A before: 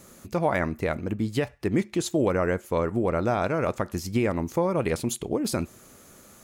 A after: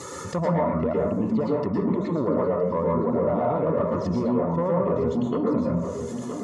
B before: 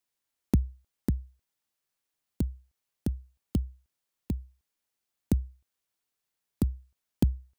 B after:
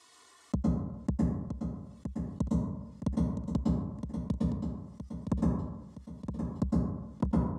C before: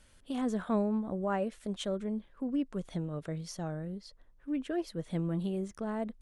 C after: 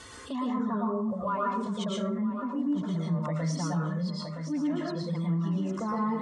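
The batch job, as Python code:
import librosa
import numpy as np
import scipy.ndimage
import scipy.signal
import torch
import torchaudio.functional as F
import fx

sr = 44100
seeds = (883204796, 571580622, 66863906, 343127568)

p1 = fx.env_lowpass_down(x, sr, base_hz=1300.0, full_db=-24.0)
p2 = fx.dereverb_blind(p1, sr, rt60_s=1.9)
p3 = fx.low_shelf(p2, sr, hz=310.0, db=2.0)
p4 = fx.rider(p3, sr, range_db=5, speed_s=0.5)
p5 = fx.env_flanger(p4, sr, rest_ms=2.7, full_db=-24.0)
p6 = 10.0 ** (-20.5 / 20.0) * np.tanh(p5 / 10.0 ** (-20.5 / 20.0))
p7 = fx.cabinet(p6, sr, low_hz=120.0, low_slope=12, high_hz=8500.0, hz=(340.0, 1000.0, 2600.0), db=(-6, 9, -5))
p8 = fx.notch_comb(p7, sr, f0_hz=790.0)
p9 = p8 + fx.echo_feedback(p8, sr, ms=967, feedback_pct=37, wet_db=-14.5, dry=0)
p10 = fx.rev_plate(p9, sr, seeds[0], rt60_s=0.53, hf_ratio=0.55, predelay_ms=100, drr_db=-4.0)
y = fx.env_flatten(p10, sr, amount_pct=50)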